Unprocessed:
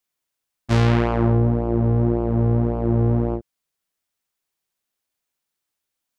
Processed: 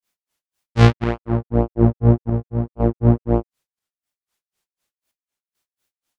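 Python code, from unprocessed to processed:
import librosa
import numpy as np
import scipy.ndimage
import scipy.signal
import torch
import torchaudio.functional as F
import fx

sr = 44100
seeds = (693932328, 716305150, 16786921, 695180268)

y = fx.chopper(x, sr, hz=0.72, depth_pct=60, duty_pct=70)
y = fx.granulator(y, sr, seeds[0], grain_ms=185.0, per_s=4.0, spray_ms=100.0, spread_st=0)
y = F.gain(torch.from_numpy(y), 8.5).numpy()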